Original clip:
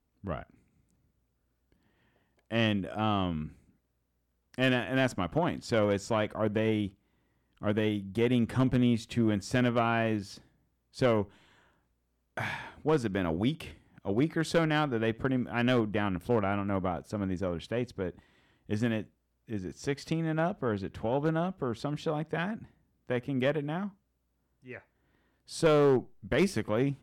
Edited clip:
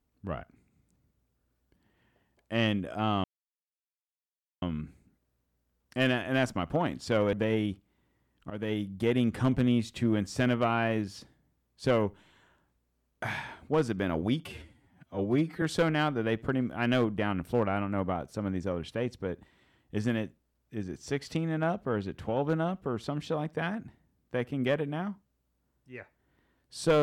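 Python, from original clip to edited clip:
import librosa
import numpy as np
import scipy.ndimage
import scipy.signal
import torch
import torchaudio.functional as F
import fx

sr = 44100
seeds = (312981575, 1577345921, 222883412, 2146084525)

y = fx.edit(x, sr, fx.insert_silence(at_s=3.24, length_s=1.38),
    fx.cut(start_s=5.95, length_s=0.53),
    fx.fade_in_from(start_s=7.65, length_s=0.32, floor_db=-14.0),
    fx.stretch_span(start_s=13.6, length_s=0.78, factor=1.5), tone=tone)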